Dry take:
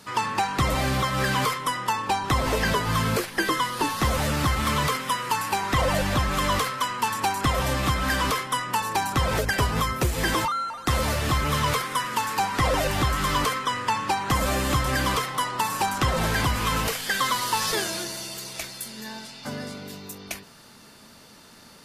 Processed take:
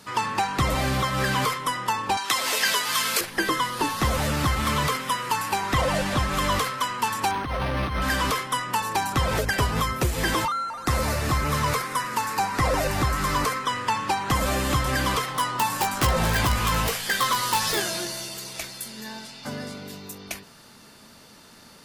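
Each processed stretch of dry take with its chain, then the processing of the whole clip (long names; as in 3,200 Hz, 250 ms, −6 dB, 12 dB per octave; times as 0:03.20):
0:02.17–0:03.21: high-pass filter 270 Hz + tilt shelving filter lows −9.5 dB, about 1,300 Hz
0:05.81–0:06.33: variable-slope delta modulation 64 kbit/s + mains-hum notches 50/100 Hz
0:07.31–0:08.02: compressor whose output falls as the input rises −26 dBFS + linearly interpolated sample-rate reduction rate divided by 6×
0:10.52–0:13.65: parametric band 3,200 Hz −7.5 dB 0.34 octaves + upward compression, threshold −30 dBFS
0:15.26–0:18.29: wrap-around overflow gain 14.5 dB + double-tracking delay 17 ms −6 dB
whole clip: no processing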